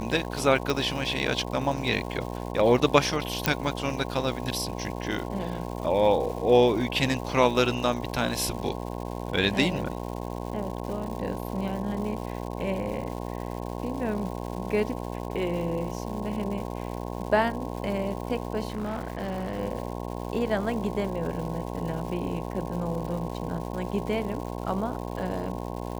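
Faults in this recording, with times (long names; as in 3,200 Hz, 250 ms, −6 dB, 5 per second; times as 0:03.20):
mains buzz 60 Hz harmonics 18 −34 dBFS
surface crackle 330 per second −36 dBFS
0:00.70: click
0:03.46: click −4 dBFS
0:18.68–0:19.60: clipping −26.5 dBFS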